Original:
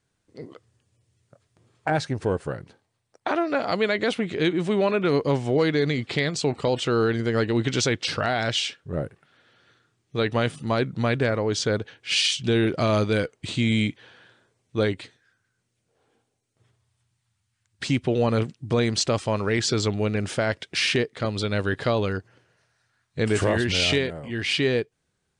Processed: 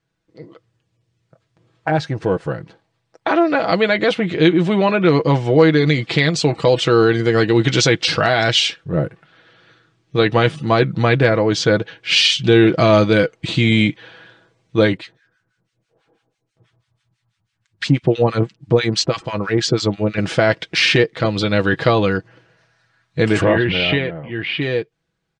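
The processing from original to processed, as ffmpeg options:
ffmpeg -i in.wav -filter_complex "[0:a]asettb=1/sr,asplit=3[link_01][link_02][link_03];[link_01]atrim=end=5.864[link_04];[link_02]atrim=start=5.86:end=8.84,asetpts=PTS-STARTPTS,afade=type=in:duration=0.004:curve=qsin,afade=type=out:start_time=2.976:duration=0.004:curve=qsin,highshelf=frequency=6500:gain=9[link_05];[link_03]atrim=start=8.836[link_06];[link_04][link_05]acrossfade=duration=0.004:curve1=hsin:curve2=qsin[link_07];[link_07][link_06]acrossfade=duration=0.004:curve1=qsin:curve2=hsin,asettb=1/sr,asplit=3[link_08][link_09][link_10];[link_08]atrim=end=14.974[link_11];[link_09]atrim=start=14.97:end=20.18,asetpts=PTS-STARTPTS,afade=type=in:duration=0.004:curve=qsin,afade=type=out:start_time=5.206:duration=0.004:curve=qsin,acrossover=split=1100[link_12][link_13];[link_12]aeval=exprs='val(0)*(1-1/2+1/2*cos(2*PI*6.1*n/s))':channel_layout=same[link_14];[link_13]aeval=exprs='val(0)*(1-1/2-1/2*cos(2*PI*6.1*n/s))':channel_layout=same[link_15];[link_14][link_15]amix=inputs=2:normalize=0[link_16];[link_10]atrim=start=20.176[link_17];[link_11][link_16]acrossfade=duration=0.004:curve1=hsin:curve2=qsin[link_18];[link_18][link_17]acrossfade=duration=0.004:curve1=qsin:curve2=hsin,asplit=3[link_19][link_20][link_21];[link_19]afade=type=out:start_time=23.4:duration=0.02[link_22];[link_20]lowpass=frequency=3200:width=0.5412,lowpass=frequency=3200:width=1.3066,afade=type=in:start_time=23.4:duration=0.02,afade=type=out:start_time=24.6:duration=0.02[link_23];[link_21]afade=type=in:start_time=24.6:duration=0.02[link_24];[link_22][link_23][link_24]amix=inputs=3:normalize=0,lowpass=4900,aecho=1:1:6.1:0.54,dynaudnorm=framelen=390:gausssize=11:maxgain=11.5dB" out.wav

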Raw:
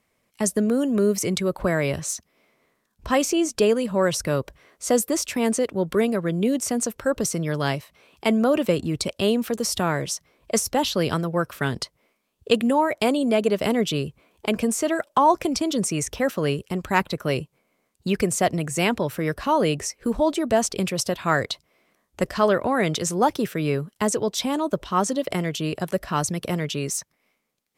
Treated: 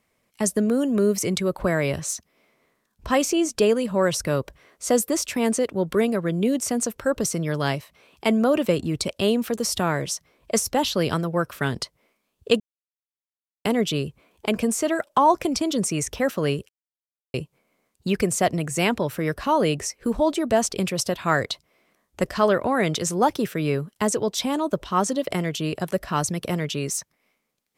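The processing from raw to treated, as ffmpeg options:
ffmpeg -i in.wav -filter_complex "[0:a]asplit=5[link_01][link_02][link_03][link_04][link_05];[link_01]atrim=end=12.6,asetpts=PTS-STARTPTS,afade=type=out:start_time=12.596:duration=0.004:curve=hsin[link_06];[link_02]atrim=start=12.6:end=13.65,asetpts=PTS-STARTPTS,volume=0[link_07];[link_03]atrim=start=13.65:end=16.69,asetpts=PTS-STARTPTS,afade=type=in:duration=0.004:curve=hsin,afade=type=out:start_time=3.036:duration=0.004:curve=hsin[link_08];[link_04]atrim=start=16.69:end=17.34,asetpts=PTS-STARTPTS,volume=0[link_09];[link_05]atrim=start=17.34,asetpts=PTS-STARTPTS,afade=type=in:duration=0.004:curve=hsin[link_10];[link_06][link_07][link_08][link_09][link_10]concat=n=5:v=0:a=1" out.wav

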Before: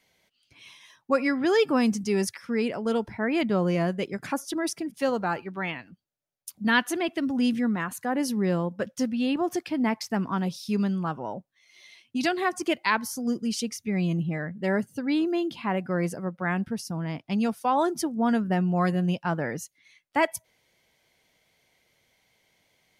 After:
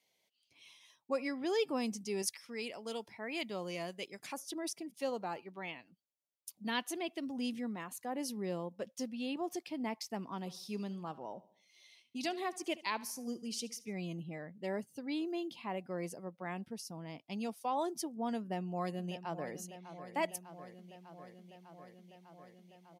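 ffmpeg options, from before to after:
ffmpeg -i in.wav -filter_complex "[0:a]asettb=1/sr,asplit=3[link_01][link_02][link_03];[link_01]atrim=end=2.224[link_04];[link_02]atrim=start=2.22:end=4.37,asetpts=PTS-STARTPTS,afade=type=in:duration=0.004:curve=qsin,afade=type=out:start_time=2.146:duration=0.004:curve=qsin,tiltshelf=frequency=1200:gain=-5.5[link_05];[link_03]atrim=start=4.366[link_06];[link_04][link_05]acrossfade=duration=0.004:curve1=hsin:curve2=qsin[link_07];[link_07][link_06]acrossfade=duration=0.004:curve1=qsin:curve2=hsin,asplit=3[link_08][link_09][link_10];[link_08]afade=type=out:start_time=10.43:duration=0.02[link_11];[link_09]aecho=1:1:72|144|216|288:0.112|0.0539|0.0259|0.0124,afade=type=in:start_time=10.43:duration=0.02,afade=type=out:start_time=13.93:duration=0.02[link_12];[link_10]afade=type=in:start_time=13.93:duration=0.02[link_13];[link_11][link_12][link_13]amix=inputs=3:normalize=0,asplit=2[link_14][link_15];[link_15]afade=type=in:start_time=18.38:duration=0.01,afade=type=out:start_time=19.54:duration=0.01,aecho=0:1:600|1200|1800|2400|3000|3600|4200|4800|5400|6000|6600|7200:0.266073|0.212858|0.170286|0.136229|0.108983|0.0871866|0.0697493|0.0557994|0.0446396|0.0357116|0.0285693|0.0228555[link_16];[link_14][link_16]amix=inputs=2:normalize=0,highpass=frequency=440:poles=1,equalizer=frequency=1500:width=1.9:gain=-12,volume=-7.5dB" out.wav

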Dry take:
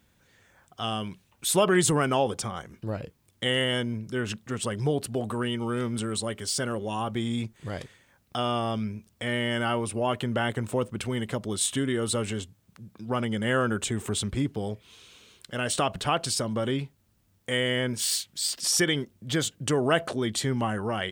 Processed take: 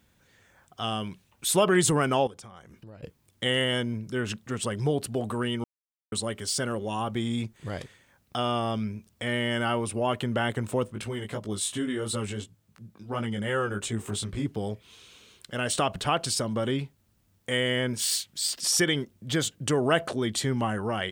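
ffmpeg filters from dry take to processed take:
ffmpeg -i in.wav -filter_complex "[0:a]asettb=1/sr,asplit=3[link_01][link_02][link_03];[link_01]atrim=end=2.274[link_04];[link_02]atrim=start=2.27:end=3.03,asetpts=PTS-STARTPTS,afade=type=in:duration=0.004:curve=qsin,afade=type=out:start_time=0.756:duration=0.004:curve=qsin,acompressor=threshold=-47dB:ratio=3:attack=3.2:release=140:knee=1:detection=peak[link_05];[link_03]atrim=start=3.026[link_06];[link_04][link_05]acrossfade=duration=0.004:curve1=hsin:curve2=qsin[link_07];[link_07][link_06]acrossfade=duration=0.004:curve1=qsin:curve2=hsin,asplit=3[link_08][link_09][link_10];[link_08]afade=type=out:start_time=10.86:duration=0.02[link_11];[link_09]flanger=delay=17.5:depth=2.6:speed=2.8,afade=type=in:start_time=10.86:duration=0.02,afade=type=out:start_time=14.45:duration=0.02[link_12];[link_10]afade=type=in:start_time=14.45:duration=0.02[link_13];[link_11][link_12][link_13]amix=inputs=3:normalize=0,asplit=3[link_14][link_15][link_16];[link_14]atrim=end=5.64,asetpts=PTS-STARTPTS,afade=type=out:start_time=5.636:duration=0.004:curve=hsin[link_17];[link_15]atrim=start=5.64:end=6.12,asetpts=PTS-STARTPTS,volume=0[link_18];[link_16]atrim=start=6.12,asetpts=PTS-STARTPTS,afade=type=in:duration=0.004:curve=hsin[link_19];[link_17][link_18][link_19]concat=n=3:v=0:a=1" out.wav

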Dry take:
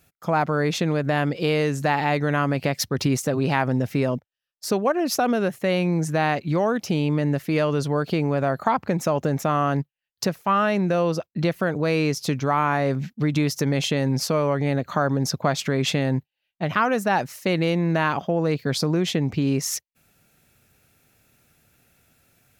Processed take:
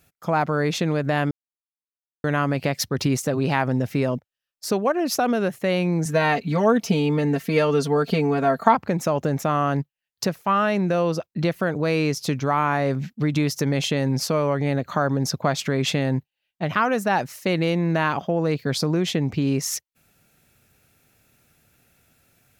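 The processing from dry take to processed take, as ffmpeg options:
ffmpeg -i in.wav -filter_complex "[0:a]asettb=1/sr,asplit=3[link_01][link_02][link_03];[link_01]atrim=end=6.054[link_04];[link_02]atrim=start=6.05:end=8.75,asetpts=PTS-STARTPTS,afade=type=in:duration=0.004:curve=qsin,afade=type=out:start_time=2.696:duration=0.004:curve=qsin,aecho=1:1:4.4:0.97,atrim=end_sample=119070[link_05];[link_03]atrim=start=8.746[link_06];[link_04][link_05]acrossfade=duration=0.004:curve1=hsin:curve2=qsin[link_07];[link_07][link_06]acrossfade=duration=0.004:curve1=qsin:curve2=hsin,asplit=3[link_08][link_09][link_10];[link_08]atrim=end=1.31,asetpts=PTS-STARTPTS,afade=type=out:start_time=1.306:duration=0.004:curve=hsin[link_11];[link_09]atrim=start=1.31:end=2.24,asetpts=PTS-STARTPTS,volume=0[link_12];[link_10]atrim=start=2.24,asetpts=PTS-STARTPTS,afade=type=in:duration=0.004:curve=hsin[link_13];[link_11][link_12][link_13]concat=n=3:v=0:a=1" out.wav

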